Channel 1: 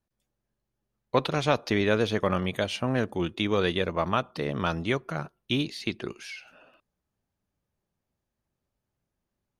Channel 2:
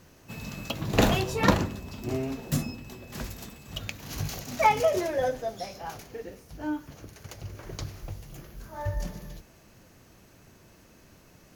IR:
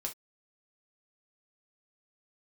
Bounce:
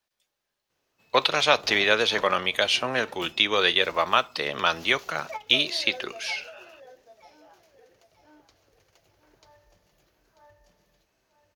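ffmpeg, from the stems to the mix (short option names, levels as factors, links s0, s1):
-filter_complex "[0:a]volume=1.06,asplit=3[s0][s1][s2];[s1]volume=0.251[s3];[1:a]tiltshelf=f=970:g=5.5,acompressor=threshold=0.0126:ratio=1.5,adelay=700,volume=0.355,asplit=2[s4][s5];[s5]volume=0.316[s6];[s2]apad=whole_len=540313[s7];[s4][s7]sidechaingate=range=0.251:threshold=0.00398:ratio=16:detection=peak[s8];[2:a]atrim=start_sample=2205[s9];[s3][s9]afir=irnorm=-1:irlink=0[s10];[s6]aecho=0:1:940|1880|2820|3760:1|0.27|0.0729|0.0197[s11];[s0][s8][s10][s11]amix=inputs=4:normalize=0,acrossover=split=390 4900:gain=0.178 1 0.126[s12][s13][s14];[s12][s13][s14]amix=inputs=3:normalize=0,crystalizer=i=6.5:c=0"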